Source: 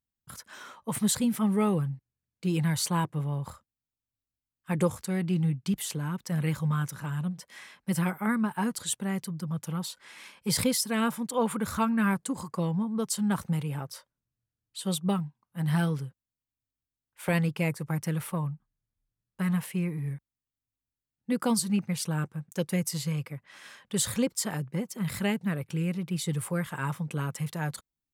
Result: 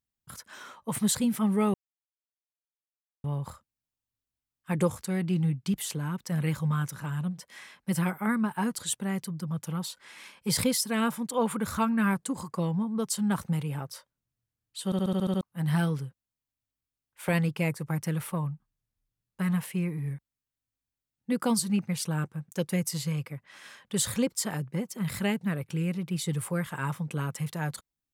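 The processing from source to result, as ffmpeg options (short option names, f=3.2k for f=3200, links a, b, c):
-filter_complex "[0:a]asplit=11[a][b][c][d][e][f][g][h][i][j][k];[a]atrim=end=1.74,asetpts=PTS-STARTPTS,afade=t=out:st=1.736:d=0.004:c=hsin[l];[b]atrim=start=1.74:end=3.24,asetpts=PTS-STARTPTS,volume=0[m];[c]atrim=start=3.24:end=14.922,asetpts=PTS-STARTPTS,afade=t=in:d=0.004:c=hsin[n];[d]atrim=start=14.848:end=14.922[o];[e]atrim=start=14.848:end=14.922[p];[f]atrim=start=14.848:end=14.922[q];[g]atrim=start=14.848:end=14.922[r];[h]atrim=start=14.848:end=14.922[s];[i]atrim=start=14.848:end=14.922[t];[j]atrim=start=14.848:end=14.922[u];[k]atrim=start=15.408[v];[l][m][n]concat=n=3:v=0:a=1[w];[w][o]acrossfade=d=0.004:c1=hsin:c2=hsin[x];[x][p]acrossfade=d=0.004:c1=hsin:c2=hsin[y];[y][q]acrossfade=d=0.004:c1=hsin:c2=hsin[z];[z][r]acrossfade=d=0.004:c1=hsin:c2=hsin[aa];[aa][s]acrossfade=d=0.004:c1=hsin:c2=hsin[ab];[ab][t]acrossfade=d=0.004:c1=hsin:c2=hsin[ac];[ac][u]acrossfade=d=0.004:c1=hsin:c2=hsin[ad];[ad][v]acrossfade=d=0.004:c1=hsin:c2=hsin"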